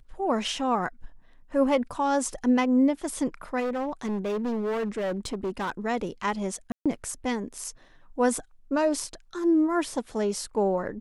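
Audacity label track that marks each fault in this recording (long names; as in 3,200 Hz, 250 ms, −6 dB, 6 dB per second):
3.590000	5.710000	clipping −25.5 dBFS
6.720000	6.860000	drop-out 136 ms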